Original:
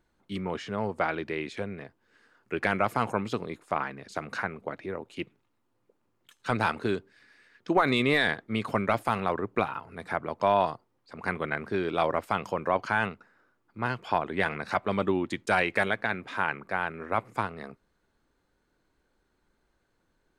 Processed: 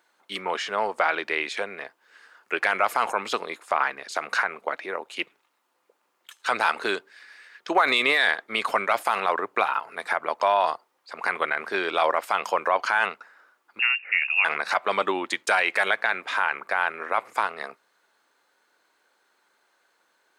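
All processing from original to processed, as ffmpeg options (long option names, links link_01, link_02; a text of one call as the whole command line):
ffmpeg -i in.wav -filter_complex "[0:a]asettb=1/sr,asplit=3[link_01][link_02][link_03];[link_01]atrim=end=13.794[link_04];[link_02]atrim=start=13.79:end=14.45,asetpts=PTS-STARTPTS,afade=type=in:duration=0.004:curve=qsin,afade=type=out:start_time=0.656:duration=0.004:curve=qsin,equalizer=frequency=1900:width=0.54:gain=-12.5,lowpass=frequency=2500:width_type=q:width=0.5098,lowpass=frequency=2500:width_type=q:width=0.6013,lowpass=frequency=2500:width_type=q:width=0.9,lowpass=frequency=2500:width_type=q:width=2.563,afreqshift=-2900[link_05];[link_03]atrim=start=14.446[link_06];[link_04][link_05]acrossfade=duration=0.004:curve1=hsin:curve2=qsin[link_07];[link_07][link_06]acrossfade=duration=0.004:curve1=qsin:curve2=hsin,highpass=720,alimiter=level_in=20dB:limit=-1dB:release=50:level=0:latency=1,volume=-9dB" out.wav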